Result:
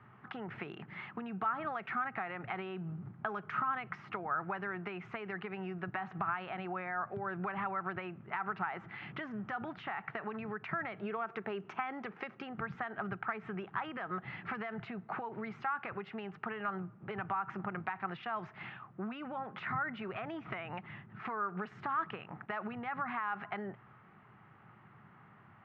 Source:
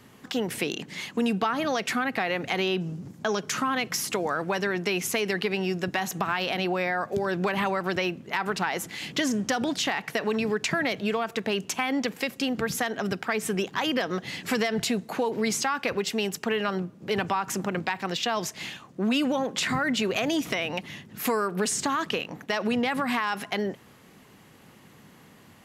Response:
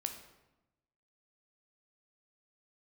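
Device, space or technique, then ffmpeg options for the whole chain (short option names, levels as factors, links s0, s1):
bass amplifier: -filter_complex "[0:a]acompressor=threshold=0.0398:ratio=6,highpass=77,equalizer=f=120:t=q:w=4:g=8,equalizer=f=270:t=q:w=4:g=-10,equalizer=f=500:t=q:w=4:g=-10,equalizer=f=810:t=q:w=4:g=4,equalizer=f=1300:t=q:w=4:g=10,lowpass=f=2200:w=0.5412,lowpass=f=2200:w=1.3066,asettb=1/sr,asplit=3[s0][s1][s2];[s0]atrim=end=10.974[s3];[s1]atrim=start=10.97:end=12.54,asetpts=PTS-STARTPTS,afade=t=in:d=0.004:c=qsin,afade=t=out:st=1.566:d=0.004:c=qsin,equalizer=f=100:t=o:w=0.67:g=-8,equalizer=f=400:t=o:w=0.67:g=6,equalizer=f=6300:t=o:w=0.67:g=9[s4];[s2]atrim=start=12.536[s5];[s3][s4]acrossfade=d=0.004:c1=hsin:c2=qsin[s6];[s6][s5]acrossfade=d=0.004:c1=qsin:c2=hsin,volume=0.473"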